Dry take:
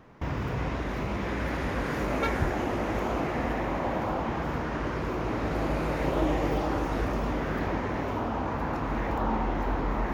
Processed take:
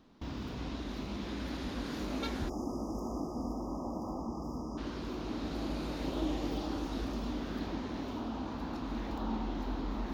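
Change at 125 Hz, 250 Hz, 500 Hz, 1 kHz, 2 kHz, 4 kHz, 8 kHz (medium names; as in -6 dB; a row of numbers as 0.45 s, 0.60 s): -10.5 dB, -5.0 dB, -11.0 dB, -12.0 dB, -14.0 dB, -2.0 dB, no reading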